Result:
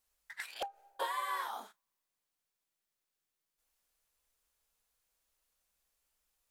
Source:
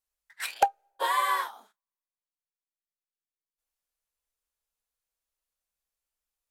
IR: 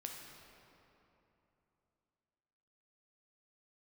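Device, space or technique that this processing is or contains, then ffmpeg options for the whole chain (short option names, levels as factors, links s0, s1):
de-esser from a sidechain: -filter_complex "[0:a]asplit=2[s0][s1];[s1]highpass=f=5100:w=0.5412,highpass=f=5100:w=1.3066,apad=whole_len=286801[s2];[s0][s2]sidechaincompress=threshold=0.00126:ratio=20:attack=4.6:release=83,volume=2.37"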